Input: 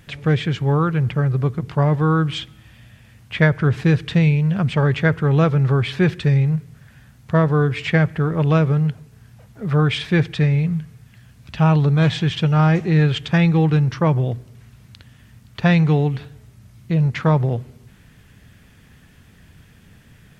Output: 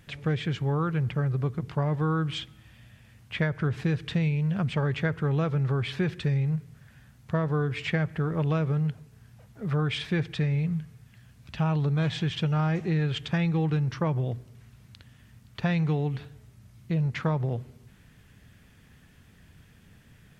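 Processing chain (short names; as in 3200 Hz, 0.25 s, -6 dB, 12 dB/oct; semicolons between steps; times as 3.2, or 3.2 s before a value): compressor, threshold -16 dBFS, peak gain reduction 6.5 dB; gain -6.5 dB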